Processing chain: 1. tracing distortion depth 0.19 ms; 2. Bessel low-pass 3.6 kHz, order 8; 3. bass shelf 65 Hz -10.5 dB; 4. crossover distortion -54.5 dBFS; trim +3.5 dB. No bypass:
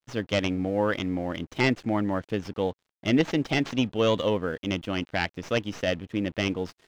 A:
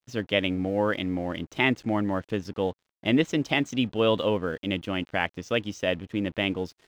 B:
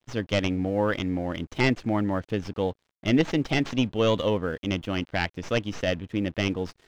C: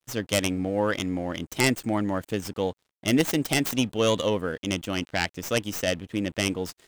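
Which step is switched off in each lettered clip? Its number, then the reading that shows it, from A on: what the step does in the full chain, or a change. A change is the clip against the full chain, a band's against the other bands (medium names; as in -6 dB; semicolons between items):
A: 1, 8 kHz band -2.5 dB; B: 3, 125 Hz band +2.5 dB; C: 2, 8 kHz band +13.0 dB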